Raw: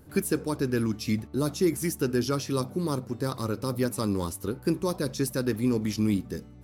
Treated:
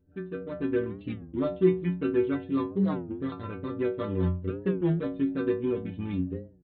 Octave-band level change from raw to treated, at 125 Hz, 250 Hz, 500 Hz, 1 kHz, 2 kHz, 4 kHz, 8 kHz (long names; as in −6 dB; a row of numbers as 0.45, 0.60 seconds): −1.5 dB, −1.0 dB, +0.5 dB, −4.5 dB, −4.5 dB, −14.0 dB, below −40 dB